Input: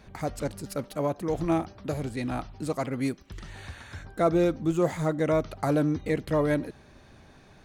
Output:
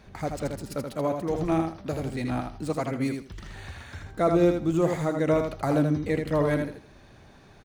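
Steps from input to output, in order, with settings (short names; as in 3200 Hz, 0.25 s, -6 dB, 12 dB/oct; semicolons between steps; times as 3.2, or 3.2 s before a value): median filter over 3 samples; feedback echo 80 ms, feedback 20%, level -5.5 dB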